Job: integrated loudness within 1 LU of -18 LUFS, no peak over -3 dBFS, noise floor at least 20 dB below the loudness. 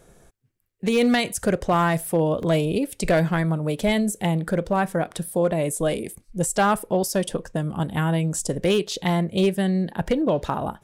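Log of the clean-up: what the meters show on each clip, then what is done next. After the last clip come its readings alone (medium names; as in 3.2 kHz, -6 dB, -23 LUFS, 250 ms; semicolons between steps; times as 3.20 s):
clipped samples 0.4%; clipping level -12.5 dBFS; dropouts 2; longest dropout 1.9 ms; loudness -23.0 LUFS; peak level -12.5 dBFS; loudness target -18.0 LUFS
-> clip repair -12.5 dBFS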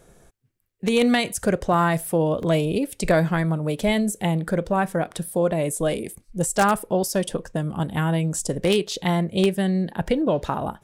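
clipped samples 0.0%; dropouts 2; longest dropout 1.9 ms
-> interpolate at 2.43/10.08 s, 1.9 ms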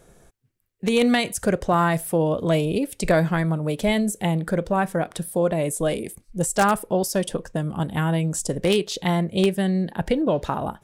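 dropouts 0; loudness -23.0 LUFS; peak level -3.5 dBFS; loudness target -18.0 LUFS
-> trim +5 dB; peak limiter -3 dBFS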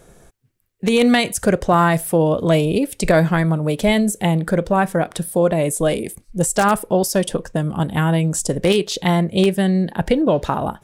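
loudness -18.0 LUFS; peak level -3.0 dBFS; noise floor -57 dBFS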